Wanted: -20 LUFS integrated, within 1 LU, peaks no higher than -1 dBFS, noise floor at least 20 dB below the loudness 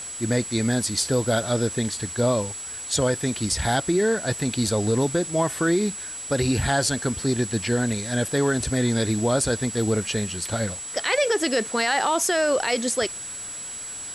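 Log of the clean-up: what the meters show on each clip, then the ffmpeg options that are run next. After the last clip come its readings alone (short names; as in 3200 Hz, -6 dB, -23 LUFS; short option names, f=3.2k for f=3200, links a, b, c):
steady tone 7800 Hz; tone level -33 dBFS; noise floor -35 dBFS; noise floor target -44 dBFS; loudness -24.0 LUFS; peak -11.5 dBFS; loudness target -20.0 LUFS
-> -af "bandreject=f=7.8k:w=30"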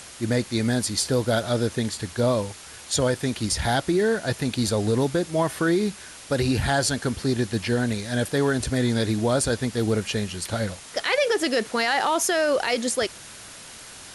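steady tone none; noise floor -43 dBFS; noise floor target -44 dBFS
-> -af "afftdn=nr=6:nf=-43"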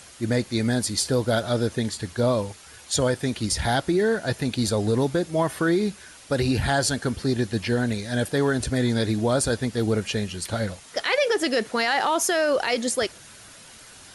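noise floor -47 dBFS; loudness -24.0 LUFS; peak -11.5 dBFS; loudness target -20.0 LUFS
-> -af "volume=4dB"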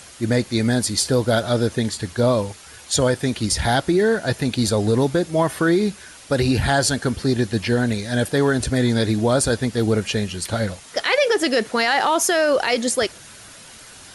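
loudness -20.0 LUFS; peak -7.5 dBFS; noise floor -43 dBFS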